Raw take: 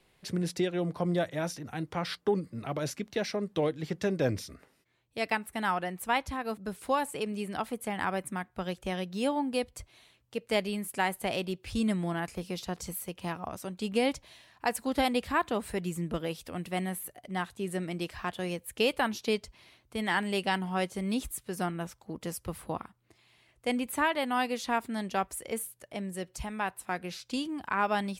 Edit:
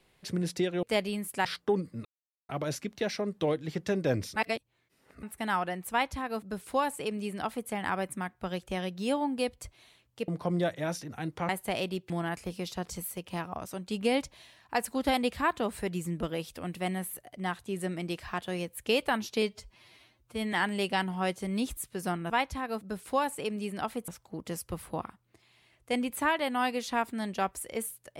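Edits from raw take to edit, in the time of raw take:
0.83–2.04 s: swap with 10.43–11.05 s
2.64 s: insert silence 0.44 s
4.51–5.38 s: reverse
6.06–7.84 s: copy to 21.84 s
11.66–12.01 s: delete
19.33–20.07 s: stretch 1.5×

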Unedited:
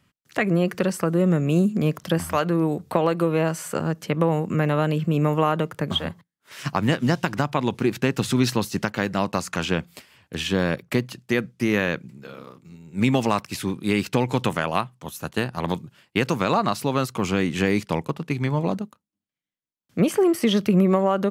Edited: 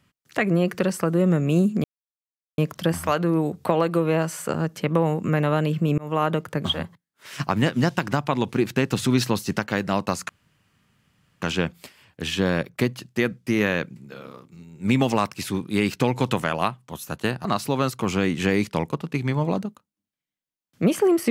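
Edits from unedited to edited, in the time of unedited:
1.84 s: insert silence 0.74 s
5.24–5.50 s: fade in
9.55 s: insert room tone 1.13 s
15.58–16.61 s: delete

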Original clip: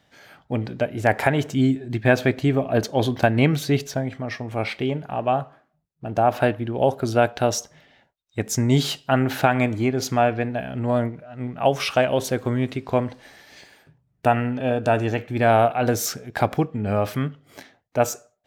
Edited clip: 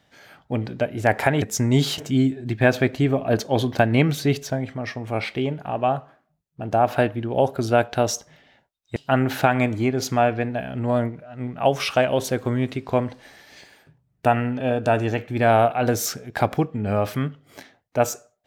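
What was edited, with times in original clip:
8.40–8.96 s: move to 1.42 s

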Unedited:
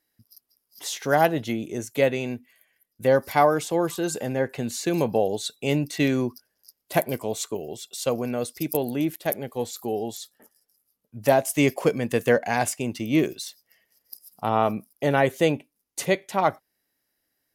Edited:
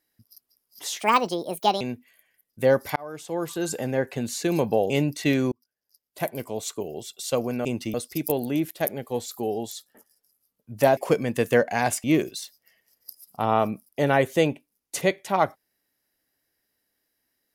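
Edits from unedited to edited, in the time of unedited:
1.00–2.23 s: speed 152%
3.38–4.14 s: fade in
5.32–5.64 s: delete
6.26–7.69 s: fade in
11.42–11.72 s: delete
12.79–13.08 s: move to 8.39 s

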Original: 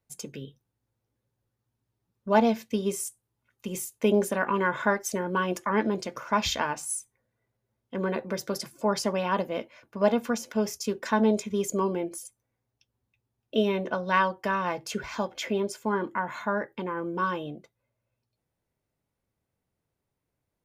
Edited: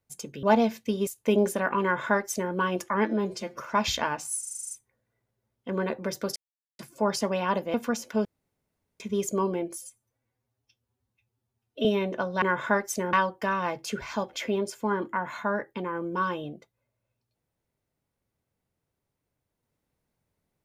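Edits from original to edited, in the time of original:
0.43–2.28 s: delete
2.92–3.83 s: delete
4.58–5.29 s: copy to 14.15 s
5.82–6.18 s: stretch 1.5×
6.97 s: stutter 0.04 s, 9 plays
8.62 s: insert silence 0.43 s
9.57–10.15 s: delete
10.66–11.41 s: room tone
12.22–13.58 s: stretch 1.5×

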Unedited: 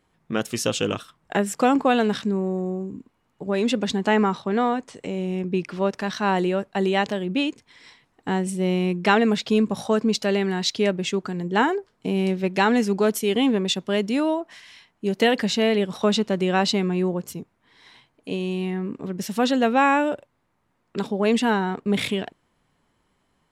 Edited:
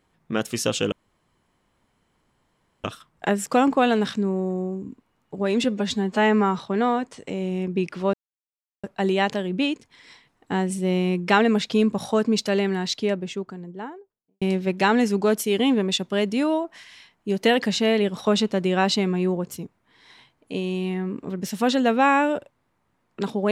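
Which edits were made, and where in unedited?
0.92 s: insert room tone 1.92 s
3.72–4.35 s: stretch 1.5×
5.90–6.60 s: mute
10.27–12.18 s: studio fade out

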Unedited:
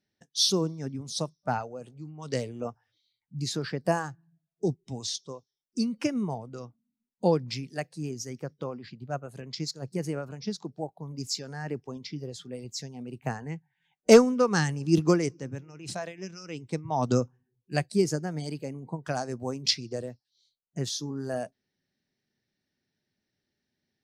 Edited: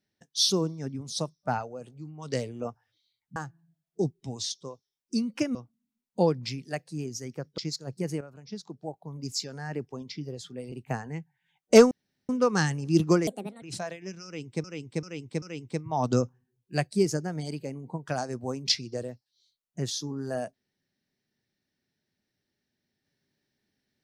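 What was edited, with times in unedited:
3.36–4.00 s: delete
6.19–6.60 s: delete
8.63–9.53 s: delete
10.16–11.16 s: fade in, from -12 dB
12.67–13.08 s: delete
14.27 s: insert room tone 0.38 s
15.25–15.78 s: speed 151%
16.41–16.80 s: loop, 4 plays

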